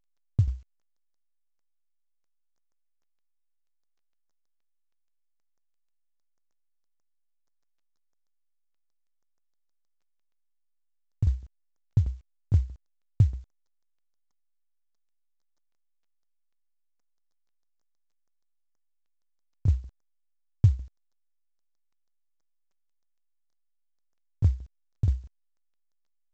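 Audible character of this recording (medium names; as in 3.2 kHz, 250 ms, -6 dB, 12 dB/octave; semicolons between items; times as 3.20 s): tremolo saw down 6.3 Hz, depth 75%; a quantiser's noise floor 12-bit, dither none; A-law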